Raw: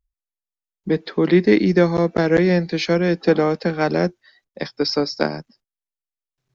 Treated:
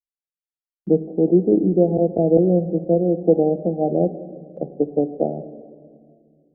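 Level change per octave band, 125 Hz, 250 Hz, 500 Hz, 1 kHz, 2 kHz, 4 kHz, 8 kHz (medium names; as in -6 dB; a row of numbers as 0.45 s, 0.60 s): -1.0 dB, 0.0 dB, +0.5 dB, -4.0 dB, under -40 dB, under -40 dB, no reading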